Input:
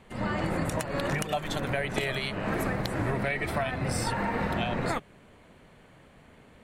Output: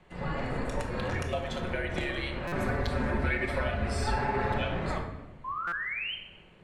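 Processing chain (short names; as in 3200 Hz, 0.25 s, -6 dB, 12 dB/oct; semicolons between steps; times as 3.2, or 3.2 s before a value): 2.55–4.68 comb 6.5 ms, depth 93%; frequency shift -60 Hz; 5.44–6.15 painted sound rise 1000–3200 Hz -31 dBFS; air absorption 61 m; shoebox room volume 520 m³, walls mixed, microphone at 1 m; stuck buffer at 2.47/5.67, samples 256, times 8; gain -4.5 dB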